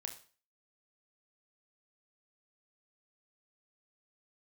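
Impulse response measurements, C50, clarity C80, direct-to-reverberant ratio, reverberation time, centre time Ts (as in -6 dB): 11.5 dB, 15.5 dB, 4.0 dB, 0.40 s, 14 ms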